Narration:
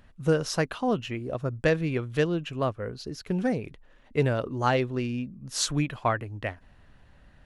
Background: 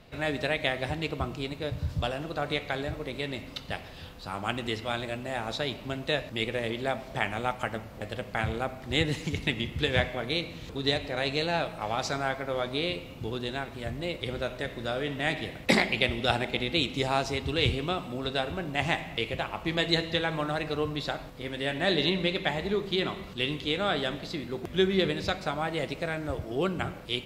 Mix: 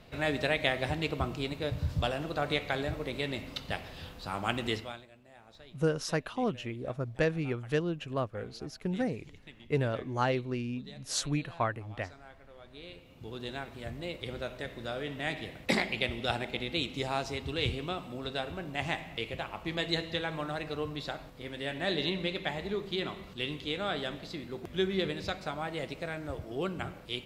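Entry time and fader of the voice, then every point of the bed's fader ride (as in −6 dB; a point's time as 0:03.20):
5.55 s, −5.0 dB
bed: 0:04.76 −0.5 dB
0:05.09 −23 dB
0:12.58 −23 dB
0:13.47 −5.5 dB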